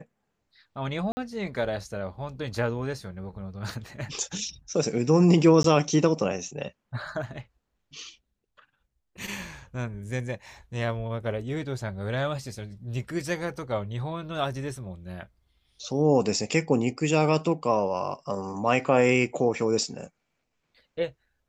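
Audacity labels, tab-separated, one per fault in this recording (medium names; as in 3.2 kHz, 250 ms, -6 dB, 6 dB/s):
1.120000	1.170000	dropout 50 ms
5.630000	5.640000	dropout 13 ms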